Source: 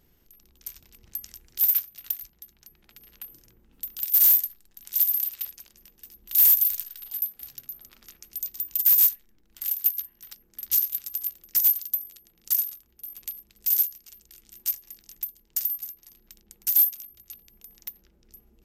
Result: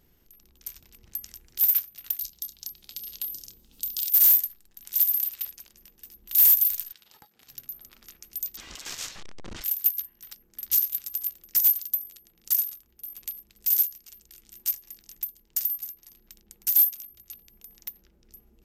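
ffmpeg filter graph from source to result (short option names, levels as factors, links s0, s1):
-filter_complex "[0:a]asettb=1/sr,asplit=3[s0][s1][s2];[s0]atrim=end=2.194[s3];[s1]atrim=start=2.19:end=4.09,asetpts=PTS-STARTPTS,afade=t=in:d=0.004:c=qsin,afade=t=out:st=1.896:d=0.004:c=qsin,acrossover=split=2700[s4][s5];[s5]acompressor=threshold=0.0112:ratio=4:attack=1:release=60[s6];[s4][s6]amix=inputs=2:normalize=0,highshelf=f=2800:t=q:w=1.5:g=13.5,asplit=2[s7][s8];[s8]adelay=29,volume=0.237[s9];[s7][s9]amix=inputs=2:normalize=0,atrim=end_sample=83790[s10];[s2]atrim=start=4.086[s11];[s3][s10]acrossfade=d=0.004:c1=hsin:c2=qsin[s12];[s12][s11]acrossfade=d=0.004:c1=qsin:c2=hsin,asettb=1/sr,asplit=3[s13][s14][s15];[s13]atrim=end=6.924[s16];[s14]atrim=start=6.92:end=7.49,asetpts=PTS-STARTPTS,afade=t=in:d=0.004:c=qsin,afade=t=out:st=0.566:d=0.004:c=qsin,aeval=exprs='clip(val(0),-1,0.0251)':c=same,acompressor=threshold=0.00794:ratio=3:attack=3.2:release=140:knee=1:detection=peak,highpass=120,lowpass=6300[s17];[s15]atrim=start=7.486[s18];[s16][s17]acrossfade=d=0.004:c1=hsin:c2=qsin[s19];[s19][s18]acrossfade=d=0.004:c1=qsin:c2=hsin,asettb=1/sr,asplit=3[s20][s21][s22];[s20]atrim=end=8.574[s23];[s21]atrim=start=8.57:end=9.64,asetpts=PTS-STARTPTS,afade=t=in:d=0.004:c=qsin,afade=t=out:st=1.066:d=0.004:c=qsin,aeval=exprs='val(0)+0.5*0.0266*sgn(val(0))':c=same,lowpass=f=6800:w=0.5412,lowpass=f=6800:w=1.3066[s24];[s22]atrim=start=9.636[s25];[s23][s24]acrossfade=d=0.004:c1=hsin:c2=qsin[s26];[s26][s25]acrossfade=d=0.004:c1=qsin:c2=hsin"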